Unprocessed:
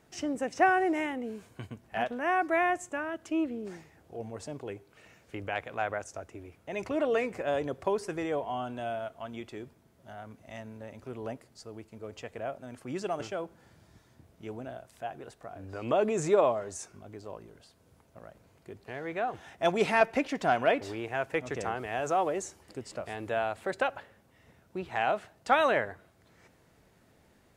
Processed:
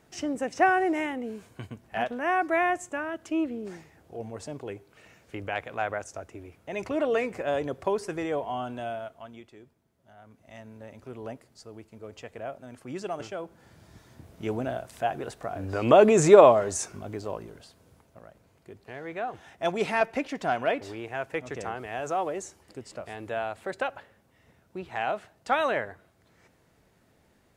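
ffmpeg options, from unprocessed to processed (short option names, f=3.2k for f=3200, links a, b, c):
-af "volume=21dB,afade=t=out:st=8.74:d=0.76:silence=0.281838,afade=t=in:st=10.14:d=0.71:silence=0.375837,afade=t=in:st=13.42:d=1.05:silence=0.298538,afade=t=out:st=17.06:d=1.19:silence=0.281838"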